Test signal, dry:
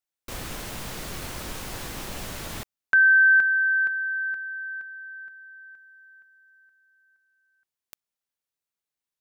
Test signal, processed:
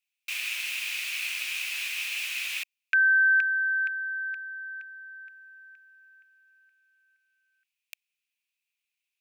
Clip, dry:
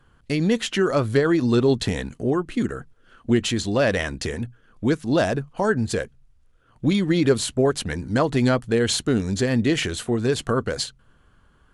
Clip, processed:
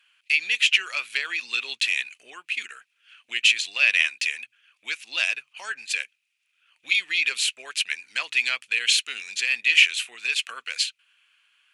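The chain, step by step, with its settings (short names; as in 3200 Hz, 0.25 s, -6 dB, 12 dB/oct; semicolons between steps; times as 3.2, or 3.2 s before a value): resonant high-pass 2500 Hz, resonance Q 7.8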